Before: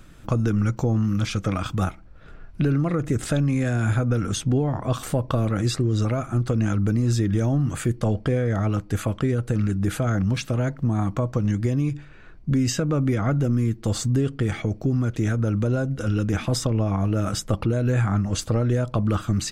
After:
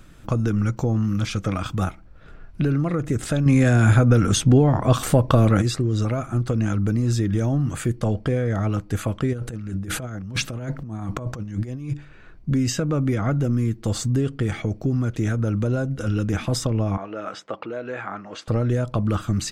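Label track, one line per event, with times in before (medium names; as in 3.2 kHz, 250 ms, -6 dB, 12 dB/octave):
3.460000	5.620000	gain +6.5 dB
9.330000	11.940000	compressor with a negative ratio -27 dBFS, ratio -0.5
16.970000	18.480000	band-pass 470–2900 Hz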